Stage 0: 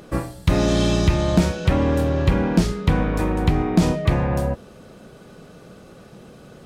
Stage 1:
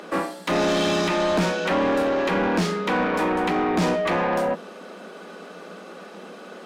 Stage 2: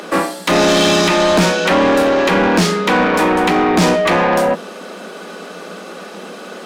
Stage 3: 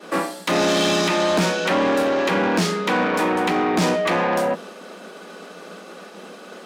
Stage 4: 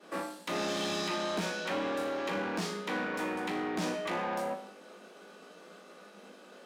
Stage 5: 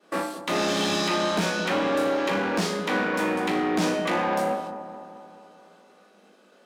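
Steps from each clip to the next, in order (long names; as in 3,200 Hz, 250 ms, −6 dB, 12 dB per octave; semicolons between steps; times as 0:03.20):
Chebyshev high-pass filter 170 Hz, order 10; mid-hump overdrive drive 24 dB, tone 2,700 Hz, clips at −5.5 dBFS; level −7 dB
high-shelf EQ 3,600 Hz +6.5 dB; level +8.5 dB
high-pass filter 100 Hz; downward expander −29 dBFS; level −6.5 dB
tuned comb filter 51 Hz, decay 0.57 s, harmonics all, mix 80%; level −6 dB
noise gate −46 dBFS, range −13 dB; delay with a low-pass on its return 216 ms, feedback 59%, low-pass 1,100 Hz, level −10 dB; level +8.5 dB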